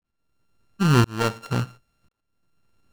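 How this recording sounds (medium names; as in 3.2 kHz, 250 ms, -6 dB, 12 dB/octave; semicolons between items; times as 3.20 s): a buzz of ramps at a fixed pitch in blocks of 32 samples; tremolo saw up 0.96 Hz, depth 100%; IMA ADPCM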